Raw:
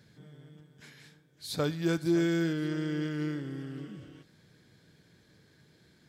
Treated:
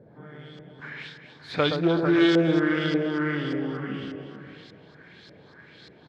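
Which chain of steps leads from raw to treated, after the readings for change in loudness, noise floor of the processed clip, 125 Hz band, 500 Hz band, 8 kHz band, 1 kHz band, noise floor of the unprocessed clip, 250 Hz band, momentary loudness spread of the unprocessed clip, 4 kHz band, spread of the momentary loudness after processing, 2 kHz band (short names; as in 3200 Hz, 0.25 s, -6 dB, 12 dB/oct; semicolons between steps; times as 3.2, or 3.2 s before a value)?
+7.5 dB, -52 dBFS, +4.0 dB, +9.0 dB, n/a, +12.5 dB, -64 dBFS, +7.0 dB, 16 LU, +9.5 dB, 22 LU, +11.0 dB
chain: low shelf 260 Hz -10 dB; in parallel at +0.5 dB: compressor, threshold -41 dBFS, peak gain reduction 13.5 dB; on the sum: outdoor echo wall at 77 m, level -8 dB; LFO low-pass saw up 1.7 Hz 490–4900 Hz; on a send: echo with dull and thin repeats by turns 0.121 s, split 1300 Hz, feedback 59%, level -6 dB; on the sum: Doppler distortion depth 0.1 ms; gain +6.5 dB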